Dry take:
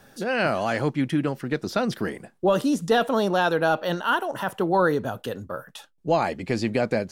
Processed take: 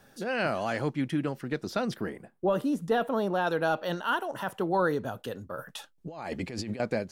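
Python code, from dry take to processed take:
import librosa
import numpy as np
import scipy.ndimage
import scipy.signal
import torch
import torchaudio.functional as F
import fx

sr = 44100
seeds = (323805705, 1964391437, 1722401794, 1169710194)

y = fx.peak_eq(x, sr, hz=5800.0, db=-10.0, octaves=1.9, at=(1.96, 3.47))
y = fx.over_compress(y, sr, threshold_db=-31.0, ratio=-1.0, at=(5.58, 6.8))
y = y * librosa.db_to_amplitude(-5.5)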